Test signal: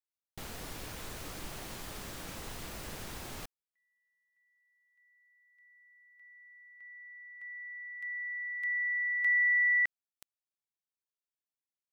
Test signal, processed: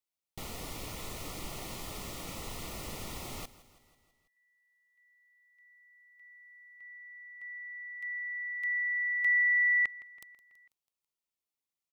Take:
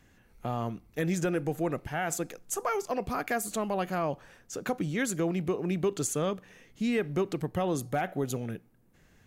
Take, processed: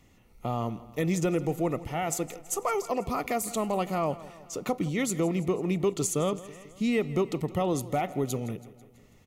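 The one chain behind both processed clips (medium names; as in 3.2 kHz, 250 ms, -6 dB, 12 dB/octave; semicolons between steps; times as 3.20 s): Butterworth band-stop 1.6 kHz, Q 3.9; on a send: feedback delay 164 ms, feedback 59%, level -18 dB; on the sum: trim +2 dB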